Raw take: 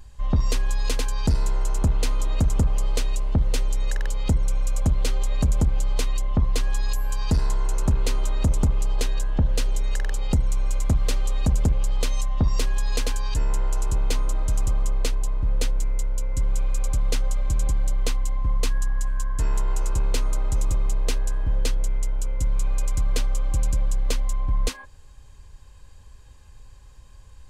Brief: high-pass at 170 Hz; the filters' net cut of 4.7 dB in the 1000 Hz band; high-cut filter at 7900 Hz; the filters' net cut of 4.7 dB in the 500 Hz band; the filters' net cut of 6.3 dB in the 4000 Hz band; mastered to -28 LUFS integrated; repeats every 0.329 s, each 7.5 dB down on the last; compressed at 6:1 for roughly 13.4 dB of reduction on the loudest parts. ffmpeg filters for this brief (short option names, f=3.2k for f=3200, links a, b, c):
-af "highpass=170,lowpass=7.9k,equalizer=f=500:t=o:g=-4.5,equalizer=f=1k:t=o:g=-4,equalizer=f=4k:t=o:g=-7.5,acompressor=threshold=-38dB:ratio=6,aecho=1:1:329|658|987|1316|1645:0.422|0.177|0.0744|0.0312|0.0131,volume=14.5dB"